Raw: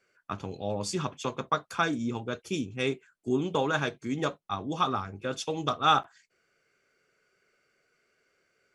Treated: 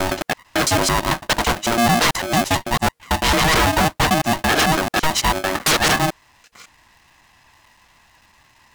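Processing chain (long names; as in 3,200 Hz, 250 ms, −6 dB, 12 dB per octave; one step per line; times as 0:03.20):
slices reordered back to front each 111 ms, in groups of 5
sine wavefolder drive 16 dB, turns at −10 dBFS
ring modulator with a square carrier 470 Hz
level −2 dB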